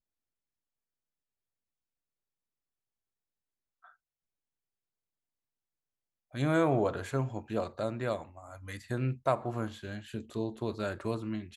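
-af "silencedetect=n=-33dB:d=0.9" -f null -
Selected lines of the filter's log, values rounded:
silence_start: 0.00
silence_end: 6.35 | silence_duration: 6.35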